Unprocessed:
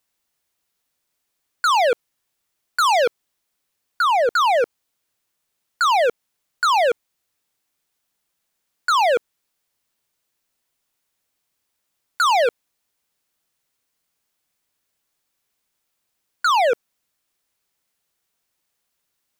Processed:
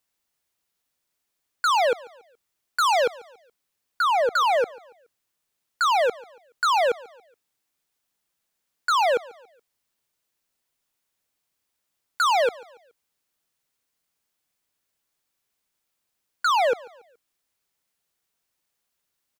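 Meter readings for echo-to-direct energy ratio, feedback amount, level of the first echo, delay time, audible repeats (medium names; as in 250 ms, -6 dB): -21.5 dB, 40%, -22.0 dB, 141 ms, 2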